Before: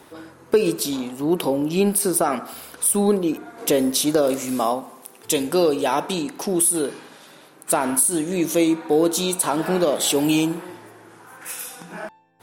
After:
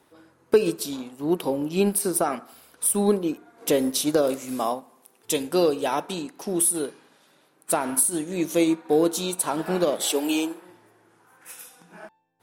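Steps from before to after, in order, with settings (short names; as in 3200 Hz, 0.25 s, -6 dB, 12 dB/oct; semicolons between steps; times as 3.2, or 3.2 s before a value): 10.03–10.62 HPF 280 Hz 24 dB/oct; upward expander 1.5:1, over -38 dBFS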